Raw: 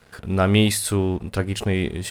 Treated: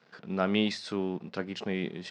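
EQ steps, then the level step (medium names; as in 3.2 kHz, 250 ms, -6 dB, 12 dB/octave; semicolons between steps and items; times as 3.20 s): elliptic band-pass 160–5400 Hz, stop band 40 dB; -8.0 dB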